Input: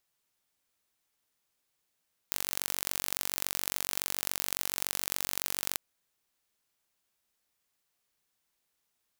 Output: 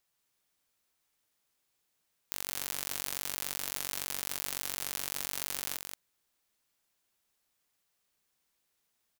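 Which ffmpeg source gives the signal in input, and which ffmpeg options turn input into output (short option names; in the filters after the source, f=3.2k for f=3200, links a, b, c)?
-f lavfi -i "aevalsrc='0.708*eq(mod(n,936),0)*(0.5+0.5*eq(mod(n,1872),0))':d=3.44:s=44100"
-af "asoftclip=type=tanh:threshold=-6.5dB,aecho=1:1:177:0.531"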